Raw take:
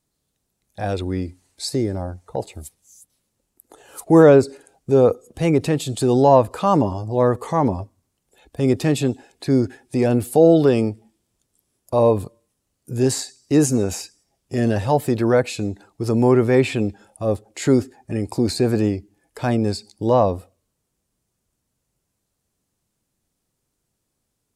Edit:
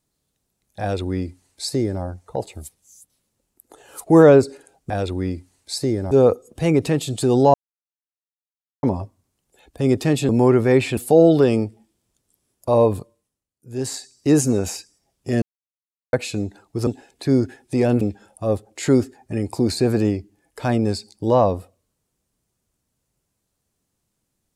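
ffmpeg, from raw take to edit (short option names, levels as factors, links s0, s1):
-filter_complex "[0:a]asplit=13[s0][s1][s2][s3][s4][s5][s6][s7][s8][s9][s10][s11][s12];[s0]atrim=end=4.902[s13];[s1]atrim=start=0.808:end=2.022[s14];[s2]atrim=start=4.898:end=6.33,asetpts=PTS-STARTPTS,afade=t=out:st=1.428:d=0.004:c=hsin[s15];[s3]atrim=start=6.33:end=7.62,asetpts=PTS-STARTPTS,volume=0[s16];[s4]atrim=start=7.62:end=9.082,asetpts=PTS-STARTPTS,afade=t=in:d=0.004:c=hsin[s17];[s5]atrim=start=16.118:end=16.802[s18];[s6]atrim=start=10.218:end=12.72,asetpts=PTS-STARTPTS,afade=t=out:st=2.022:d=0.48:silence=0.141254[s19];[s7]atrim=start=12.72:end=12.9,asetpts=PTS-STARTPTS,volume=0.141[s20];[s8]atrim=start=12.9:end=14.67,asetpts=PTS-STARTPTS,afade=t=in:d=0.48:silence=0.141254,afade=t=out:st=1.766:d=0.004:c=hsin[s21];[s9]atrim=start=14.67:end=15.38,asetpts=PTS-STARTPTS,volume=0[s22];[s10]atrim=start=15.38:end=16.122,asetpts=PTS-STARTPTS,afade=t=in:d=0.004:c=hsin[s23];[s11]atrim=start=9.078:end=10.222[s24];[s12]atrim=start=16.798[s25];[s13][s14]acrossfade=d=0.004:c1=hsin:c2=hsin[s26];[s15][s16][s17]concat=n=3:v=0:a=1[s27];[s26][s27]acrossfade=d=0.004:c1=hsin:c2=hsin[s28];[s28][s18]acrossfade=d=0.004:c1=hsin:c2=hsin[s29];[s19][s20][s21][s22][s23]concat=n=5:v=0:a=1[s30];[s29][s30]acrossfade=d=0.004:c1=hsin:c2=hsin[s31];[s31][s24]acrossfade=d=0.004:c1=hsin:c2=hsin[s32];[s32][s25]acrossfade=d=0.004:c1=hsin:c2=hsin"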